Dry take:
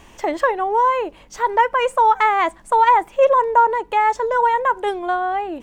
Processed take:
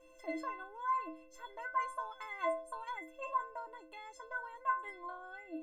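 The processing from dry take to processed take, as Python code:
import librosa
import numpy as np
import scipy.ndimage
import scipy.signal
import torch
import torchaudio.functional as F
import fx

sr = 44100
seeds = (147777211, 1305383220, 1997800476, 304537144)

y = fx.stiff_resonator(x, sr, f0_hz=310.0, decay_s=0.51, stiffness=0.03)
y = y + 10.0 ** (-59.0 / 20.0) * np.sin(2.0 * np.pi * 520.0 * np.arange(len(y)) / sr)
y = F.gain(torch.from_numpy(y), -2.0).numpy()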